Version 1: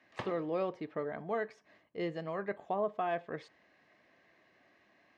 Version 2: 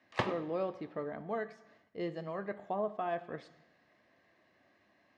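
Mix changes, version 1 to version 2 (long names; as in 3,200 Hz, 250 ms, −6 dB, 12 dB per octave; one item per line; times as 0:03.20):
speech: send on
background +8.5 dB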